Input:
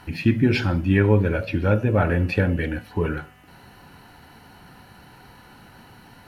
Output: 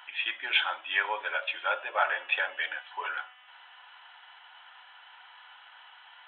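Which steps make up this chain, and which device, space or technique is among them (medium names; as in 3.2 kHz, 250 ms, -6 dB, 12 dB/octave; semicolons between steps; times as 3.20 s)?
high-pass 280 Hz 12 dB/octave; musical greeting card (resampled via 8 kHz; high-pass 880 Hz 24 dB/octave; peaking EQ 3.3 kHz +11 dB 0.26 oct); band-stop 480 Hz, Q 12; dynamic bell 620 Hz, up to +6 dB, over -47 dBFS, Q 0.79; trim -1 dB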